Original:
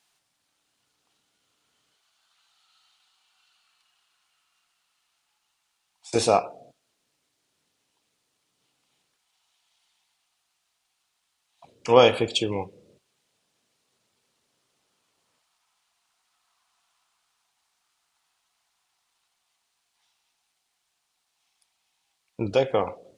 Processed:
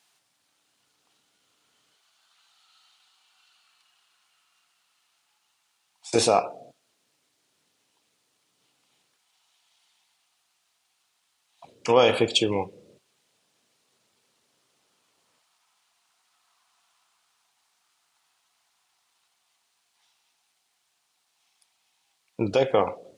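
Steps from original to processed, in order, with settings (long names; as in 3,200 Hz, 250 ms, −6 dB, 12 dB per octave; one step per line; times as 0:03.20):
in parallel at −1.5 dB: compressor whose output falls as the input rises −21 dBFS, ratio −0.5
on the sum: high-pass filter 120 Hz 6 dB per octave
level −3.5 dB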